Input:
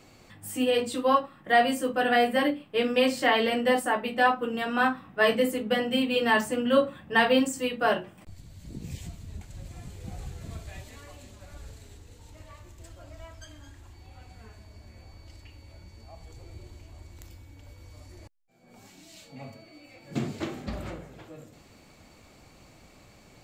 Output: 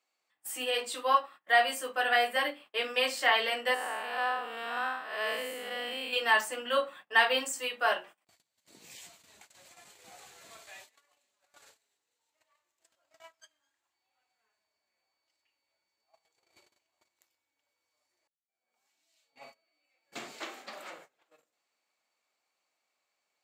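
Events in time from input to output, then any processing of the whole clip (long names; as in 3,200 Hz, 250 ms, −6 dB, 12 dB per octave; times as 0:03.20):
0:03.74–0:06.13: spectrum smeared in time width 226 ms
0:20.41–0:20.92: high-pass filter 180 Hz 24 dB per octave
whole clip: noise gate −42 dBFS, range −23 dB; high-pass filter 800 Hz 12 dB per octave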